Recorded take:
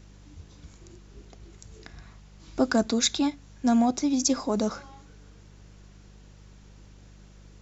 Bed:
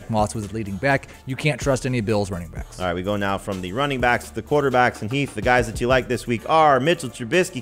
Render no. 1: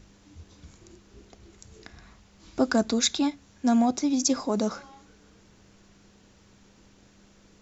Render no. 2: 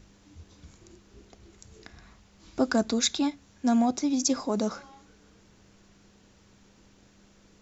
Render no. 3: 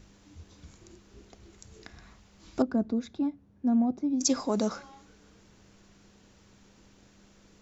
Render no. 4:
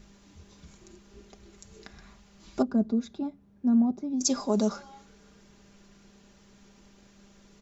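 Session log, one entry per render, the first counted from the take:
hum removal 50 Hz, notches 3
level −1.5 dB
0:02.62–0:04.21: resonant band-pass 150 Hz, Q 0.56
comb filter 5 ms, depth 53%; dynamic equaliser 2,100 Hz, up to −5 dB, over −51 dBFS, Q 1.2

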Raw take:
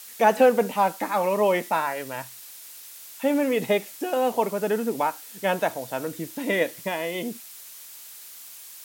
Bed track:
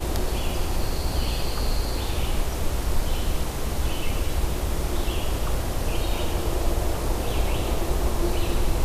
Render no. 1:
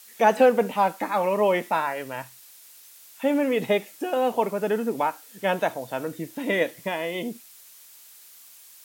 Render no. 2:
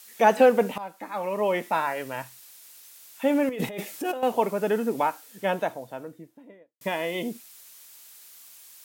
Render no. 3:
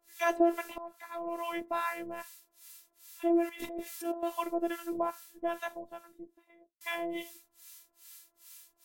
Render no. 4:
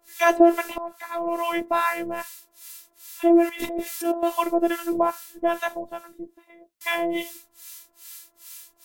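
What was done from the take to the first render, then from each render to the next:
noise reduction from a noise print 6 dB
0:00.78–0:01.91: fade in linear, from −18 dB; 0:03.49–0:04.23: compressor whose output falls as the input rises −31 dBFS; 0:05.05–0:06.81: fade out and dull
two-band tremolo in antiphase 2.4 Hz, depth 100%, crossover 880 Hz; phases set to zero 338 Hz
level +10.5 dB

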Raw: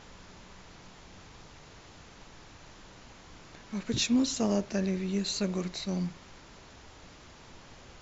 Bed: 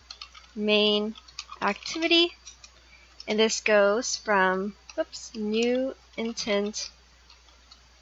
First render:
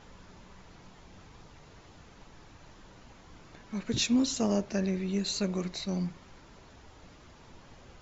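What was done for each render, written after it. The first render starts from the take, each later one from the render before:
broadband denoise 6 dB, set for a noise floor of −53 dBFS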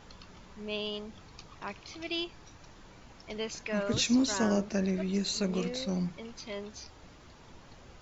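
mix in bed −14 dB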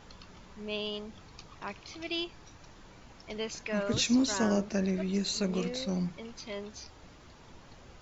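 no processing that can be heard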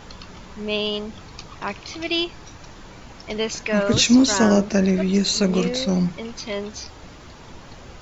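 level +11.5 dB

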